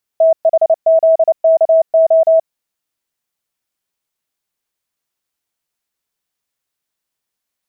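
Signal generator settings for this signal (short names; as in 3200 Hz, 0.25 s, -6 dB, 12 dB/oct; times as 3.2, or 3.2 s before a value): Morse "THZKO" 29 wpm 649 Hz -6 dBFS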